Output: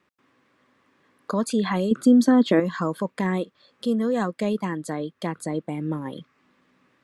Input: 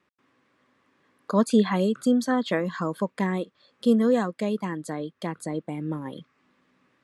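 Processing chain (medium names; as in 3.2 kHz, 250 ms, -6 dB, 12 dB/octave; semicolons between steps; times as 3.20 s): in parallel at -1 dB: compressor with a negative ratio -25 dBFS, ratio -0.5; 1.91–2.60 s: on the sum: peaking EQ 300 Hz +11 dB 1.4 oct; trim -4.5 dB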